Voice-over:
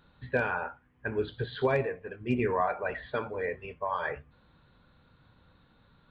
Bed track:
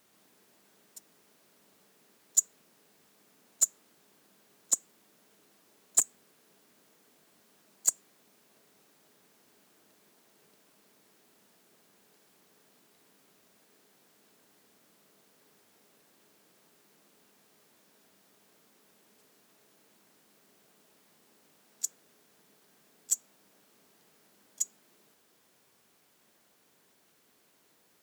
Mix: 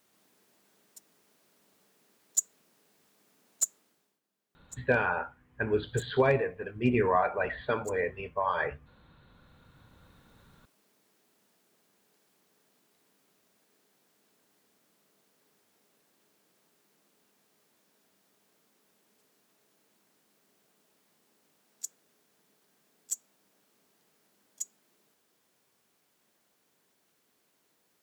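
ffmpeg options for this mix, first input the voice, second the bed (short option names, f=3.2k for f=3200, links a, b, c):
-filter_complex "[0:a]adelay=4550,volume=2.5dB[a];[1:a]volume=12dB,afade=t=out:st=3.71:d=0.49:silence=0.133352,afade=t=in:st=9.23:d=1.14:silence=0.177828[b];[a][b]amix=inputs=2:normalize=0"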